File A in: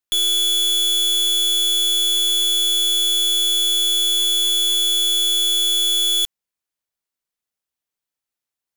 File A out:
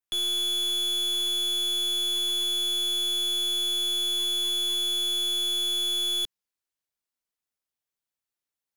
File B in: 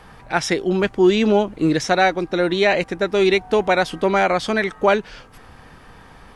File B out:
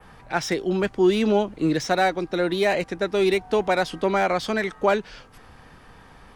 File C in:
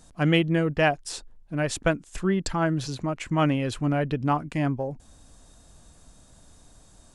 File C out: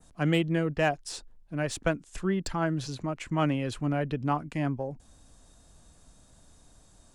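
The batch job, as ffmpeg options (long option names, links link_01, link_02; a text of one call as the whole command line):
ffmpeg -i in.wav -filter_complex "[0:a]adynamicequalizer=threshold=0.0224:dfrequency=4800:dqfactor=1.3:tfrequency=4800:tqfactor=1.3:attack=5:release=100:ratio=0.375:range=1.5:mode=boostabove:tftype=bell,acrossover=split=270|1600[link_01][link_02][link_03];[link_03]asoftclip=type=tanh:threshold=-22dB[link_04];[link_01][link_02][link_04]amix=inputs=3:normalize=0,volume=-4dB" out.wav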